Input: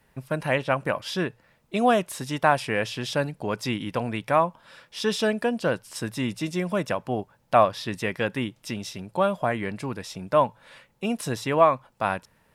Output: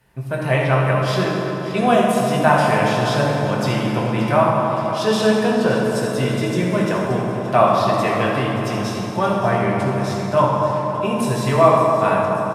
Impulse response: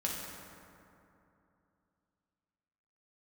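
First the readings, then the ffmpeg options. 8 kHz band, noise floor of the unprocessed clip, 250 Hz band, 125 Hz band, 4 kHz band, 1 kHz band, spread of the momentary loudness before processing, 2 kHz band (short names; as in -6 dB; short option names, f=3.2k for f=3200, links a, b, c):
+5.5 dB, -64 dBFS, +9.0 dB, +12.5 dB, +5.5 dB, +7.5 dB, 11 LU, +6.0 dB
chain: -filter_complex "[0:a]aecho=1:1:574|1148|1722|2296|2870|3444:0.211|0.116|0.0639|0.0352|0.0193|0.0106[a];[1:a]atrim=start_sample=2205,asetrate=30870,aresample=44100[b];[a][b]afir=irnorm=-1:irlink=0"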